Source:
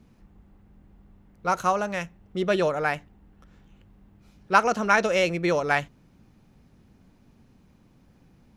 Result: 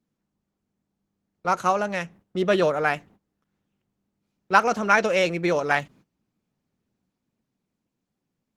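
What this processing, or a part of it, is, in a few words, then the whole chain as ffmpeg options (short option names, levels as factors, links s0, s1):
video call: -af "highpass=130,dynaudnorm=f=300:g=11:m=1.5,agate=range=0.1:threshold=0.00398:ratio=16:detection=peak" -ar 48000 -c:a libopus -b:a 16k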